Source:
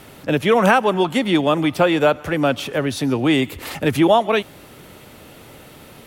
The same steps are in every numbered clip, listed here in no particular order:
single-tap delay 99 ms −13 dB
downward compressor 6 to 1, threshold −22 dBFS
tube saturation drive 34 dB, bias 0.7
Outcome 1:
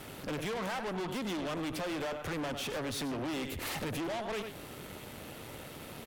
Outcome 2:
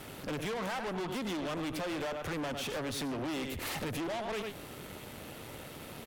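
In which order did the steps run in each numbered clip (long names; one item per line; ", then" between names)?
downward compressor, then single-tap delay, then tube saturation
single-tap delay, then downward compressor, then tube saturation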